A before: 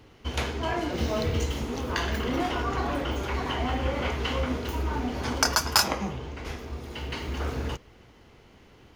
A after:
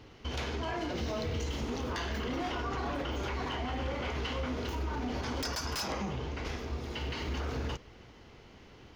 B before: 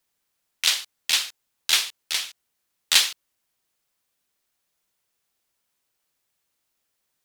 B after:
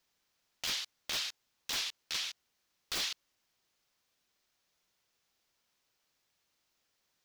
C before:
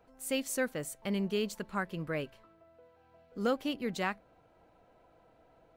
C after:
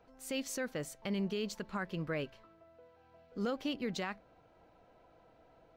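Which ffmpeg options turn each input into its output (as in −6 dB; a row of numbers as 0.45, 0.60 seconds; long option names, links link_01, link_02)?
-af "aeval=exprs='0.112*(abs(mod(val(0)/0.112+3,4)-2)-1)':channel_layout=same,highshelf=frequency=7200:width_type=q:width=1.5:gain=-6.5,alimiter=level_in=3dB:limit=-24dB:level=0:latency=1:release=51,volume=-3dB"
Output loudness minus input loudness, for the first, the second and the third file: −7.0, −14.0, −3.5 LU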